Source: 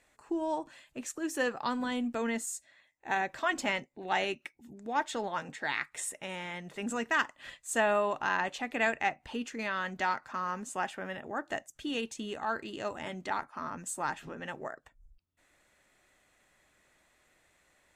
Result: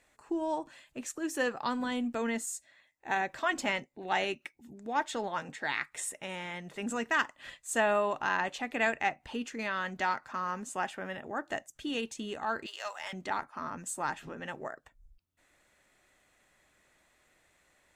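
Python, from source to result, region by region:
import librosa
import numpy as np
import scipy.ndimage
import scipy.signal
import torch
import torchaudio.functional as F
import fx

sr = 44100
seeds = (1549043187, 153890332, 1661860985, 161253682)

y = fx.chain(x, sr, fx.bessel_highpass(hz=1000.0, order=6),
    fx.peak_eq(hz=5400.0, db=9.5, octaves=0.29),
    fx.leveller(passes=1), at=(12.66, 13.13))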